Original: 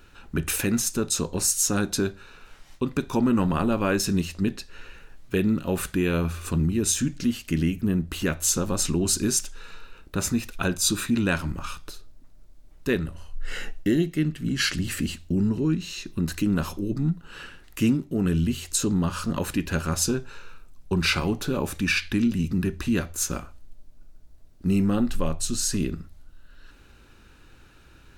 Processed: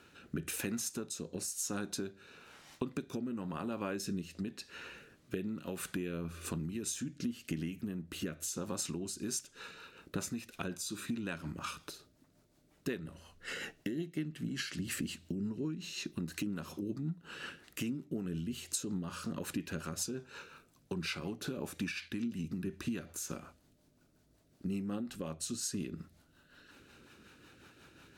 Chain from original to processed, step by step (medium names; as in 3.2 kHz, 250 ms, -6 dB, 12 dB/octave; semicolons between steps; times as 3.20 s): high-pass 140 Hz 12 dB/octave; compression 10:1, threshold -33 dBFS, peak gain reduction 15.5 dB; rotary cabinet horn 1 Hz, later 5.5 Hz, at 8.92 s